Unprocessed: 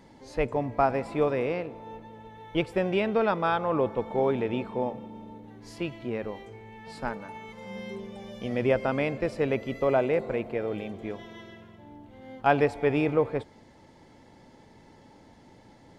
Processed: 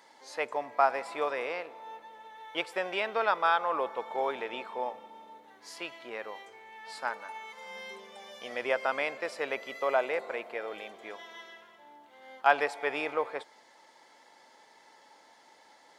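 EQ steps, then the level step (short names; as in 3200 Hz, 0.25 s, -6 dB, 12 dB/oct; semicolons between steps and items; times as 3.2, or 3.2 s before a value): HPF 880 Hz 12 dB/oct; bell 2600 Hz -3.5 dB 0.52 oct; +3.5 dB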